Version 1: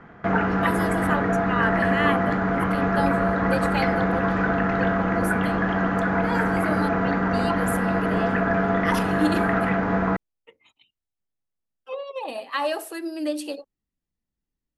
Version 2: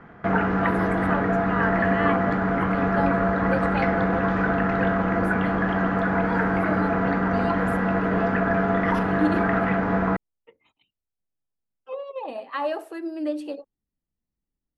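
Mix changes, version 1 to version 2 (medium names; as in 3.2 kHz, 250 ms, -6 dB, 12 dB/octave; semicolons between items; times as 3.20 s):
speech: add treble shelf 2.5 kHz -11.5 dB; master: add treble shelf 6 kHz -8 dB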